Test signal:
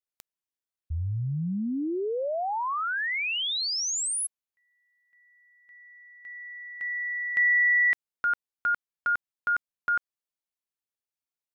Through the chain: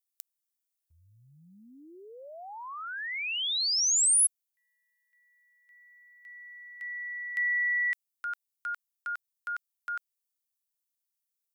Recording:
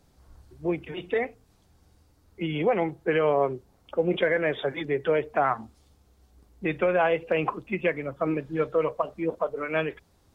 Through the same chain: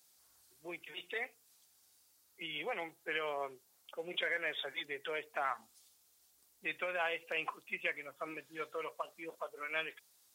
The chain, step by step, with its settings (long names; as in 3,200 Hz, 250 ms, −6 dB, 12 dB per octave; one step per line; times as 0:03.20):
first difference
level +5 dB